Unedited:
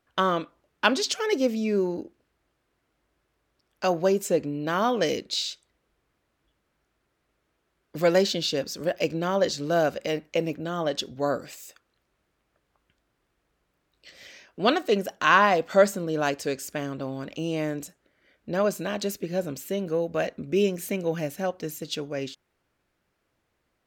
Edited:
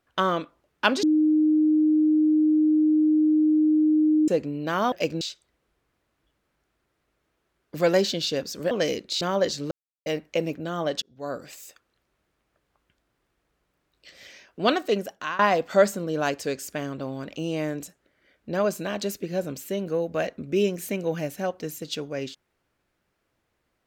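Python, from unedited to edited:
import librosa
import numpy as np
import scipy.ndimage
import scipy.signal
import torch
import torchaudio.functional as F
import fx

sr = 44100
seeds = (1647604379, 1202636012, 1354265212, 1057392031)

y = fx.edit(x, sr, fx.bleep(start_s=1.03, length_s=3.25, hz=308.0, db=-16.5),
    fx.swap(start_s=4.92, length_s=0.5, other_s=8.92, other_length_s=0.29),
    fx.silence(start_s=9.71, length_s=0.35),
    fx.fade_in_span(start_s=11.02, length_s=0.56),
    fx.fade_out_to(start_s=14.71, length_s=0.68, curve='qsin', floor_db=-21.5), tone=tone)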